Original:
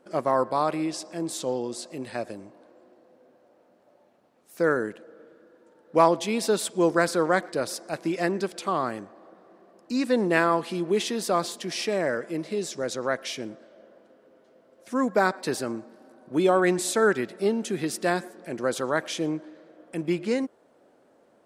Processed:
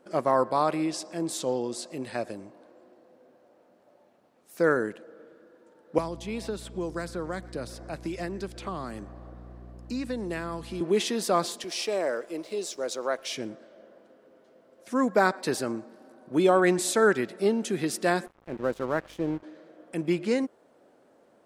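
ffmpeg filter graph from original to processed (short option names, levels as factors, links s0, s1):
-filter_complex "[0:a]asettb=1/sr,asplit=3[s0][s1][s2];[s0]atrim=end=5.984[s3];[s1]atrim=start=5.98:end=10.81,asetpts=PTS-STARTPTS,afade=t=in:d=0.004:c=qsin,afade=t=out:st=4.826:d=0.004:c=qsin,acrossover=split=250|3500[s4][s5][s6];[s4]acompressor=threshold=0.0126:ratio=4[s7];[s5]acompressor=threshold=0.0178:ratio=4[s8];[s6]acompressor=threshold=0.00316:ratio=4[s9];[s7][s8][s9]amix=inputs=3:normalize=0,aeval=exprs='val(0)+0.00631*(sin(2*PI*60*n/s)+sin(2*PI*2*60*n/s)/2+sin(2*PI*3*60*n/s)/3+sin(2*PI*4*60*n/s)/4+sin(2*PI*5*60*n/s)/5)':c=same[s10];[s2]atrim=start=10.806[s11];[s3][s10]acrossfade=d=0.004:c1=hsin:c2=qsin[s12];[s12][s11]acrossfade=d=0.004:c1=qsin:c2=hsin,asettb=1/sr,asplit=3[s13][s14][s15];[s13]atrim=end=11.644[s16];[s14]atrim=start=11.64:end=13.31,asetpts=PTS-STARTPTS,afade=t=in:d=0.004:c=qsin,afade=t=out:st=1.666:d=0.004:c=qsin,highpass=370,equalizer=f=1800:w=2.4:g=-7.5,aeval=exprs='sgn(val(0))*max(abs(val(0))-0.00119,0)':c=same[s17];[s15]atrim=start=13.306[s18];[s16][s17]acrossfade=d=0.004:c1=hsin:c2=qsin[s19];[s19][s18]acrossfade=d=0.004:c1=qsin:c2=hsin,asettb=1/sr,asplit=3[s20][s21][s22];[s20]atrim=end=18.264[s23];[s21]atrim=start=18.26:end=19.43,asetpts=PTS-STARTPTS,afade=t=in:d=0.004:c=qsin,afade=t=out:st=1.166:d=0.004:c=qsin,lowpass=f=1100:p=1,aeval=exprs='val(0)+0.00282*(sin(2*PI*50*n/s)+sin(2*PI*2*50*n/s)/2+sin(2*PI*3*50*n/s)/3+sin(2*PI*4*50*n/s)/4+sin(2*PI*5*50*n/s)/5)':c=same,aeval=exprs='sgn(val(0))*max(abs(val(0))-0.00708,0)':c=same[s24];[s22]atrim=start=19.426[s25];[s23][s24]acrossfade=d=0.004:c1=hsin:c2=qsin[s26];[s26][s25]acrossfade=d=0.004:c1=qsin:c2=hsin"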